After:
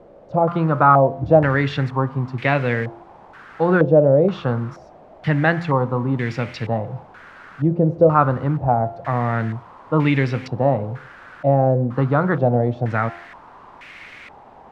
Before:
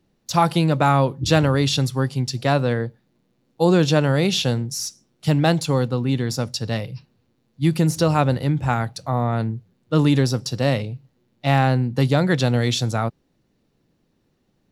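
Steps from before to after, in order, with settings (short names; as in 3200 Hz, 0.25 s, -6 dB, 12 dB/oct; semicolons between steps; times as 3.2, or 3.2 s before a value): de-hum 86.02 Hz, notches 20; in parallel at +1.5 dB: compressor 10:1, threshold -30 dBFS, peak gain reduction 19.5 dB; on the sum: requantised 6-bit, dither triangular; stepped low-pass 2.1 Hz 570–2200 Hz; gain -2.5 dB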